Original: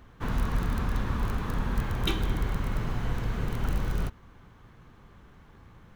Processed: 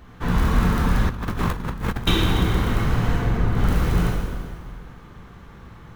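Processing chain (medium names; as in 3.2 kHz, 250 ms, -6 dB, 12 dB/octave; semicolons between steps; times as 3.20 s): 3.16–3.57 s: treble shelf 2.6 kHz -12 dB; plate-style reverb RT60 1.9 s, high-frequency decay 0.9×, DRR -3.5 dB; 1.09–2.07 s: compressor with a negative ratio -29 dBFS, ratio -0.5; trim +5 dB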